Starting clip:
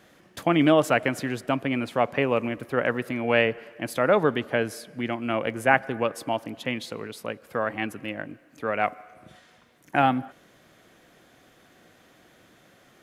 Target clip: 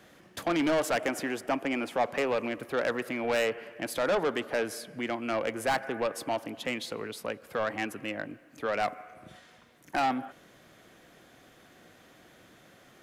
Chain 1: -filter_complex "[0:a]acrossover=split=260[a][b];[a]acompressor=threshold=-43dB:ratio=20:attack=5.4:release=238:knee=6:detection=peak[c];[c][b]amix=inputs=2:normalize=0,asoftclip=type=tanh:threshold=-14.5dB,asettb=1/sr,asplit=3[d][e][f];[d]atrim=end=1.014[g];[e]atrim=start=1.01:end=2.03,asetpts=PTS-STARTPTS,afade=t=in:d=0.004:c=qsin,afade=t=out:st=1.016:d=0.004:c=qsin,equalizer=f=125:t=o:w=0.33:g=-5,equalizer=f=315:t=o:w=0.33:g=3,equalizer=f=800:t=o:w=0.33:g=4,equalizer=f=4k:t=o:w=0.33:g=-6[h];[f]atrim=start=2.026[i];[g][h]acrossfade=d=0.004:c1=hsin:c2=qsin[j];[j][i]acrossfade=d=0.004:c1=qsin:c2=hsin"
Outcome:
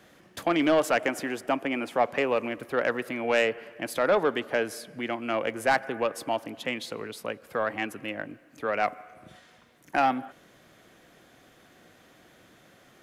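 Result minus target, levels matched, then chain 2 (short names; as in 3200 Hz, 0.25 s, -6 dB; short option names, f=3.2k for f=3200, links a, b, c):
soft clip: distortion -7 dB
-filter_complex "[0:a]acrossover=split=260[a][b];[a]acompressor=threshold=-43dB:ratio=20:attack=5.4:release=238:knee=6:detection=peak[c];[c][b]amix=inputs=2:normalize=0,asoftclip=type=tanh:threshold=-22.5dB,asettb=1/sr,asplit=3[d][e][f];[d]atrim=end=1.014[g];[e]atrim=start=1.01:end=2.03,asetpts=PTS-STARTPTS,afade=t=in:d=0.004:c=qsin,afade=t=out:st=1.016:d=0.004:c=qsin,equalizer=f=125:t=o:w=0.33:g=-5,equalizer=f=315:t=o:w=0.33:g=3,equalizer=f=800:t=o:w=0.33:g=4,equalizer=f=4k:t=o:w=0.33:g=-6[h];[f]atrim=start=2.026[i];[g][h]acrossfade=d=0.004:c1=hsin:c2=qsin[j];[j][i]acrossfade=d=0.004:c1=qsin:c2=hsin"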